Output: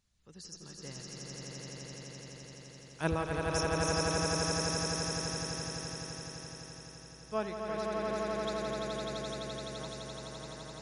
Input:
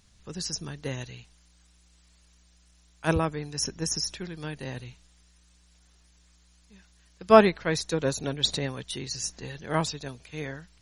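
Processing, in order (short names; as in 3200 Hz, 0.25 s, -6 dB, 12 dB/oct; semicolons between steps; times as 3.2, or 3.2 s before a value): Doppler pass-by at 3.03, 6 m/s, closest 6.4 m; on a send: swelling echo 85 ms, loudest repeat 8, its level -3.5 dB; on the sum: gain -7 dB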